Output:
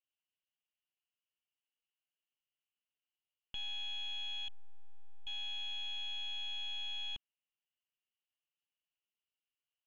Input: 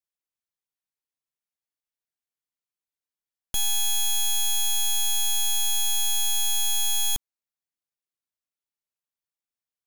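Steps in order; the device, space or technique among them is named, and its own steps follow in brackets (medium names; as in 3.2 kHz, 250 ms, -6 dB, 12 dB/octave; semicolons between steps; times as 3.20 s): 4.48–5.27 s: low-pass 1.3 kHz 24 dB/octave; overdriven synthesiser ladder filter (saturation -31.5 dBFS, distortion -20 dB; four-pole ladder low-pass 3 kHz, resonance 85%); trim +4 dB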